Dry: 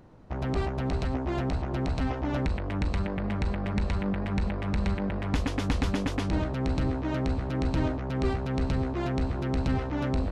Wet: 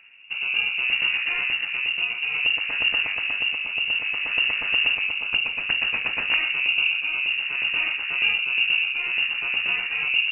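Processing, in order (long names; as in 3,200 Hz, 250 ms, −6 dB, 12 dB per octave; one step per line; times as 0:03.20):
wrap-around overflow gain 16 dB
pitch-shifted copies added +5 semitones −7 dB
rotating-speaker cabinet horn 0.6 Hz
on a send at −15 dB: convolution reverb RT60 0.90 s, pre-delay 3 ms
on the sum: voice inversion scrambler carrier 2,800 Hz
level +3.5 dB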